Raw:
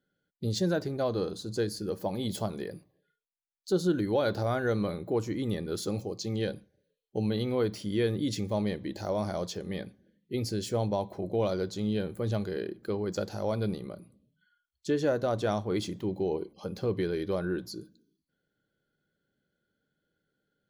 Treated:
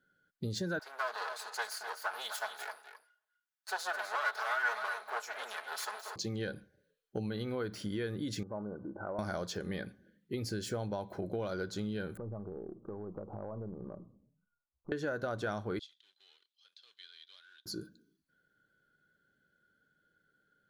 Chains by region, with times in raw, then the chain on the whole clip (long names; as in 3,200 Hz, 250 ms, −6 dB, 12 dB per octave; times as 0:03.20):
0:00.79–0:06.16: lower of the sound and its delayed copy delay 4.7 ms + high-pass filter 720 Hz 24 dB per octave + single-tap delay 253 ms −10 dB
0:08.43–0:09.19: Chebyshev low-pass filter 1,500 Hz, order 10 + downward compressor 2 to 1, threshold −38 dBFS + low-shelf EQ 160 Hz −10 dB
0:12.17–0:14.92: gain on one half-wave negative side −3 dB + Butterworth low-pass 1,200 Hz 96 dB per octave + downward compressor, threshold −39 dBFS
0:15.79–0:17.66: mu-law and A-law mismatch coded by A + four-pole ladder band-pass 3,800 Hz, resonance 70%
whole clip: downward compressor, threshold −34 dBFS; parametric band 1,500 Hz +12 dB 0.46 octaves